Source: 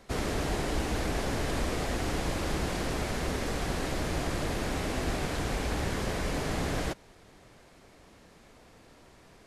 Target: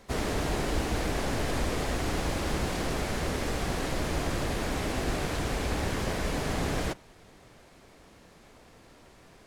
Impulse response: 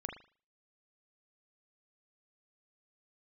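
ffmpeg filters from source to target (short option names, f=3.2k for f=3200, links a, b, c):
-filter_complex "[0:a]asplit=2[a][b];[b]asetrate=66075,aresample=44100,atempo=0.66742,volume=-11dB[c];[a][c]amix=inputs=2:normalize=0,asplit=2[d][e];[1:a]atrim=start_sample=2205[f];[e][f]afir=irnorm=-1:irlink=0,volume=-18dB[g];[d][g]amix=inputs=2:normalize=0"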